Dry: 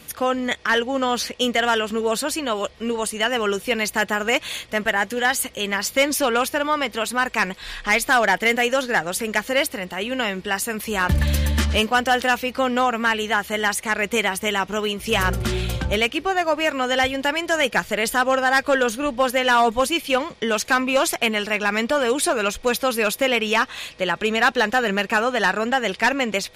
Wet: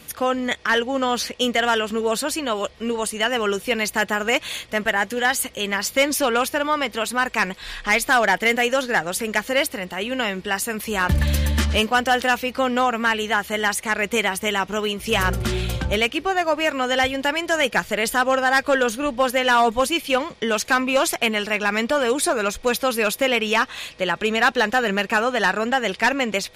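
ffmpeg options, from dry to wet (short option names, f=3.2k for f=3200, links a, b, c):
-filter_complex "[0:a]asettb=1/sr,asplit=3[a][b][c];[a]atrim=end=22.134[d];[b]atrim=start=22.13:end=22.58,asetpts=PTS-STARTPTS,afade=t=in:d=0.004:c=qsin,afade=t=out:st=0.446:d=0.004:c=qsin,equalizer=f=2.9k:t=o:w=0.26:g=-7.5[e];[c]atrim=start=22.576[f];[d][e]acrossfade=d=0.004:c1=hsin:c2=qsin[g];[g][f]acrossfade=d=0.004:c1=qsin:c2=hsin"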